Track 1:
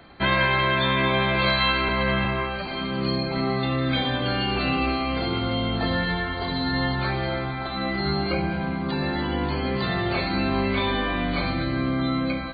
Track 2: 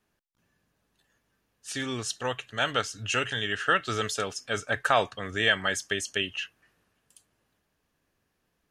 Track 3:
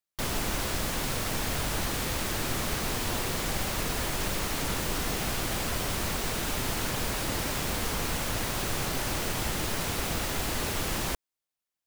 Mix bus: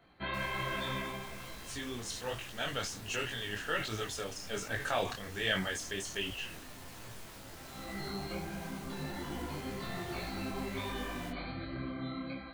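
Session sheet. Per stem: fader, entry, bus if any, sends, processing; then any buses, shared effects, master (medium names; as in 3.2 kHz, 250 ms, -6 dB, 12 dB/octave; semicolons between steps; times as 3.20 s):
-11.5 dB, 0.00 s, no send, auto duck -18 dB, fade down 0.65 s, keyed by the second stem
-4.5 dB, 0.00 s, no send, peaking EQ 1.2 kHz -5 dB; decay stretcher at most 77 dB/s
-8.0 dB, 0.15 s, no send, saturation -29 dBFS, distortion -12 dB; flange 0.43 Hz, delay 8.7 ms, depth 8.5 ms, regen +49%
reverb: none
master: detune thickener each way 44 cents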